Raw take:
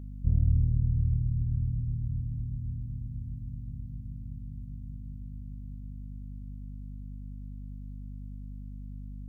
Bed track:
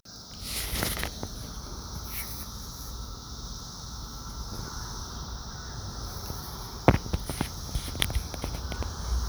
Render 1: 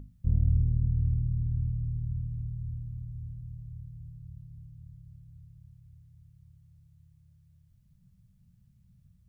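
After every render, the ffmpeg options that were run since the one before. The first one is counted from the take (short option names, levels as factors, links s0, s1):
-af "bandreject=f=50:t=h:w=6,bandreject=f=100:t=h:w=6,bandreject=f=150:t=h:w=6,bandreject=f=200:t=h:w=6,bandreject=f=250:t=h:w=6,bandreject=f=300:t=h:w=6"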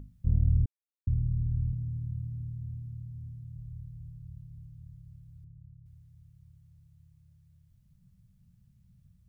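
-filter_complex "[0:a]asettb=1/sr,asplit=3[s0][s1][s2];[s0]atrim=end=1.734[s3];[s1]atrim=start=1.73:end=3.56,asetpts=PTS-STARTPTS,afade=t=in:d=0.004:c=qsin,afade=t=out:st=1.826:d=0.004:c=qsin,highpass=91[s4];[s2]atrim=start=3.556[s5];[s3][s4]acrossfade=d=0.004:c1=hsin:c2=qsin[s6];[s6][s5]acrossfade=d=0.004:c1=qsin:c2=hsin,asettb=1/sr,asplit=3[s7][s8][s9];[s7]atrim=end=5.444[s10];[s8]atrim=start=5.44:end=5.86,asetpts=PTS-STARTPTS,afade=t=in:d=0.004:c=qsin,afade=t=out:st=0.416:d=0.004:c=qsin,lowpass=f=300:t=q:w=2.5[s11];[s9]atrim=start=5.856[s12];[s10][s11]acrossfade=d=0.004:c1=hsin:c2=qsin[s13];[s13][s12]acrossfade=d=0.004:c1=qsin:c2=hsin,asplit=3[s14][s15][s16];[s14]atrim=end=0.66,asetpts=PTS-STARTPTS,afade=t=out:st=0.656:d=0.004:c=hsin[s17];[s15]atrim=start=0.66:end=1.07,asetpts=PTS-STARTPTS,volume=0[s18];[s16]atrim=start=1.07,asetpts=PTS-STARTPTS,afade=t=in:d=0.004:c=hsin[s19];[s17][s18][s19]concat=n=3:v=0:a=1"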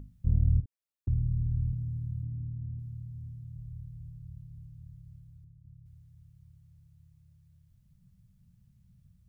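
-filter_complex "[0:a]asettb=1/sr,asplit=3[s0][s1][s2];[s0]atrim=end=0.604[s3];[s1]atrim=start=0.6:end=1.08,asetpts=PTS-STARTPTS,afade=t=in:d=0.004:c=qsin,afade=t=out:st=0.476:d=0.004:c=qsin,acompressor=threshold=0.0126:ratio=6:attack=3.2:release=140:knee=1:detection=peak[s4];[s2]atrim=start=1.076[s5];[s3][s4]acrossfade=d=0.004:c1=hsin:c2=qsin[s6];[s6][s5]acrossfade=d=0.004:c1=qsin:c2=hsin,asettb=1/sr,asplit=3[s7][s8][s9];[s7]atrim=end=2.234[s10];[s8]atrim=start=2.23:end=2.79,asetpts=PTS-STARTPTS,afade=t=in:d=0.004:c=qsin,afade=t=out:st=0.556:d=0.004:c=qsin,lowpass=f=370:t=q:w=1.9[s11];[s9]atrim=start=2.786[s12];[s10][s11]acrossfade=d=0.004:c1=hsin:c2=qsin[s13];[s13][s12]acrossfade=d=0.004:c1=qsin:c2=hsin,asplit=2[s14][s15];[s14]atrim=end=5.65,asetpts=PTS-STARTPTS,afade=t=out:st=5.17:d=0.48:silence=0.501187[s16];[s15]atrim=start=5.65,asetpts=PTS-STARTPTS,afade=t=in:d=0.004:c=hsin:silence=0.501187[s17];[s16][s17]concat=n=2:v=0:a=1"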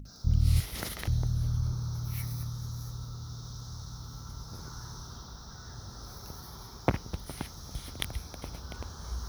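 -filter_complex "[1:a]volume=0.422[s0];[0:a][s0]amix=inputs=2:normalize=0"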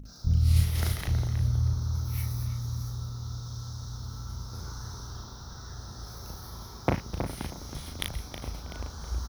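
-filter_complex "[0:a]asplit=2[s0][s1];[s1]adelay=36,volume=0.631[s2];[s0][s2]amix=inputs=2:normalize=0,asplit=2[s3][s4];[s4]adelay=320,lowpass=f=1800:p=1,volume=0.473,asplit=2[s5][s6];[s6]adelay=320,lowpass=f=1800:p=1,volume=0.26,asplit=2[s7][s8];[s8]adelay=320,lowpass=f=1800:p=1,volume=0.26[s9];[s3][s5][s7][s9]amix=inputs=4:normalize=0"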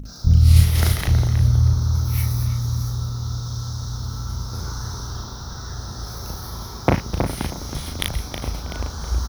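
-af "volume=3.16,alimiter=limit=0.891:level=0:latency=1"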